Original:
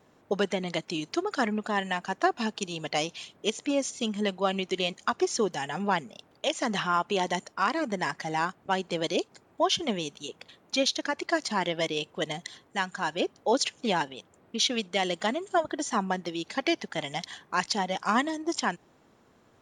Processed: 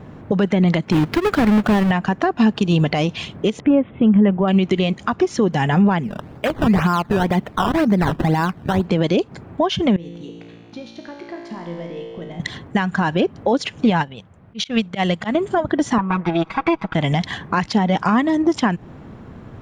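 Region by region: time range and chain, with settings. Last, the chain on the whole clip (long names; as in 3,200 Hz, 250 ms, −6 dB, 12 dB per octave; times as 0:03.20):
0:00.92–0:01.91: each half-wave held at its own peak + low-shelf EQ 150 Hz −6.5 dB
0:03.60–0:04.48: Gaussian smoothing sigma 3.7 samples + bad sample-rate conversion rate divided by 6×, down none, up filtered
0:06.03–0:08.86: low-pass filter 3,700 Hz 24 dB per octave + sample-and-hold swept by an LFO 14× 2 Hz
0:09.96–0:12.40: parametric band 470 Hz +7 dB 2.6 octaves + downward compressor 3 to 1, threshold −39 dBFS + tuned comb filter 57 Hz, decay 1.9 s, mix 90%
0:13.90–0:15.35: parametric band 330 Hz −8 dB 1.1 octaves + volume swells 103 ms + expander for the loud parts, over −44 dBFS
0:15.98–0:16.95: lower of the sound and its delayed copy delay 0.83 ms + resonant band-pass 960 Hz, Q 0.9 + comb filter 6.2 ms, depth 72%
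whole clip: downward compressor 5 to 1, threshold −32 dBFS; bass and treble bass +14 dB, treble −15 dB; boost into a limiter +23.5 dB; level −6.5 dB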